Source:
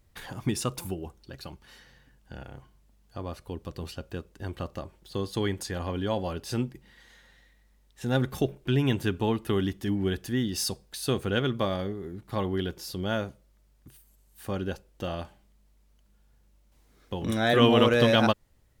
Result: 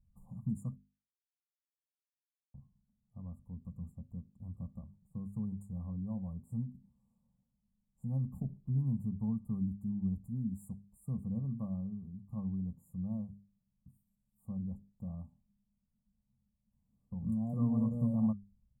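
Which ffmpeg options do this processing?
-filter_complex "[0:a]asplit=3[s0][s1][s2];[s0]atrim=end=0.76,asetpts=PTS-STARTPTS,afade=t=out:st=0.756:d=0.004:c=hsin[s3];[s1]atrim=start=0.76:end=2.54,asetpts=PTS-STARTPTS,volume=0[s4];[s2]atrim=start=2.54,asetpts=PTS-STARTPTS,afade=t=in:d=0.004:c=hsin[s5];[s3][s4][s5]concat=n=3:v=0:a=1,bandreject=f=50:t=h:w=6,bandreject=f=100:t=h:w=6,bandreject=f=150:t=h:w=6,bandreject=f=200:t=h:w=6,bandreject=f=250:t=h:w=6,bandreject=f=300:t=h:w=6,bandreject=f=350:t=h:w=6,bandreject=f=400:t=h:w=6,afftfilt=real='re*(1-between(b*sr/4096,1200,6900))':imag='im*(1-between(b*sr/4096,1200,6900))':win_size=4096:overlap=0.75,firequalizer=gain_entry='entry(110,0);entry(210,6);entry(330,-29);entry(520,-19)':delay=0.05:min_phase=1,volume=0.501"

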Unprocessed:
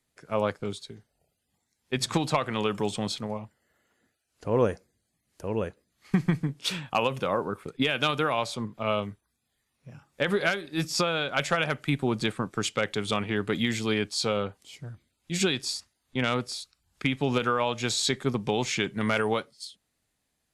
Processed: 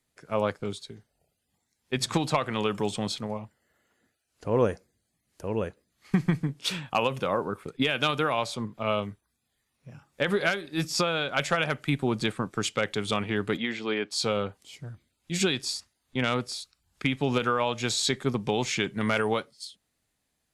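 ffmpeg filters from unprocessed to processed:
-filter_complex "[0:a]asplit=3[s0][s1][s2];[s0]afade=t=out:st=13.56:d=0.02[s3];[s1]highpass=280,lowpass=3000,afade=t=in:st=13.56:d=0.02,afade=t=out:st=14.1:d=0.02[s4];[s2]afade=t=in:st=14.1:d=0.02[s5];[s3][s4][s5]amix=inputs=3:normalize=0"

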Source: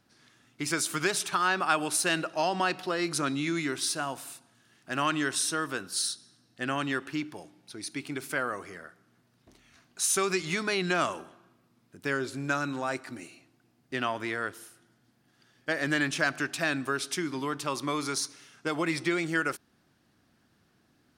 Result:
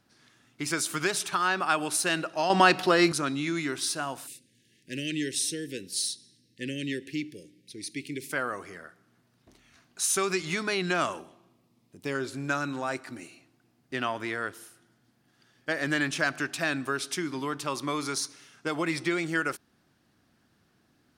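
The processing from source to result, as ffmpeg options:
-filter_complex "[0:a]asplit=3[s0][s1][s2];[s0]afade=t=out:st=4.26:d=0.02[s3];[s1]asuperstop=centerf=990:order=12:qfactor=0.74,afade=t=in:st=4.26:d=0.02,afade=t=out:st=8.31:d=0.02[s4];[s2]afade=t=in:st=8.31:d=0.02[s5];[s3][s4][s5]amix=inputs=3:normalize=0,asettb=1/sr,asplit=3[s6][s7][s8];[s6]atrim=end=11.194[s9];[s7]atrim=start=11.19:end=12.15,asetpts=PTS-STARTPTS,afade=t=in:d=0.004:c=qsin,afade=t=out:st=0.956:d=0.004:c=qsin,equalizer=f=1500:t=o:w=0.47:g=-13[s10];[s8]atrim=start=12.146[s11];[s9][s10]acrossfade=d=0.004:c1=hsin:c2=qsin[s12];[s12][s11]acrossfade=d=0.004:c1=qsin:c2=hsin,asplit=3[s13][s14][s15];[s13]atrim=end=2.502[s16];[s14]atrim=start=2.498:end=3.122,asetpts=PTS-STARTPTS,volume=2.66[s17];[s15]atrim=start=3.118[s18];[s16][s17]acrossfade=d=0.004:c1=hsin:c2=hsin[s19];[s19][s18]acrossfade=d=0.004:c1=hsin:c2=hsin"

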